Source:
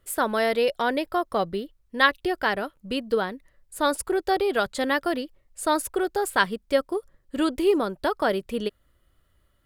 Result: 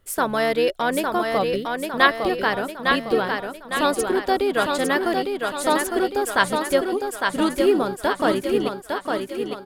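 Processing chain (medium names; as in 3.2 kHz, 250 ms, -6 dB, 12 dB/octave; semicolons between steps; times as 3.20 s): harmony voices -7 st -12 dB; thinning echo 856 ms, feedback 51%, high-pass 170 Hz, level -4 dB; trim +2 dB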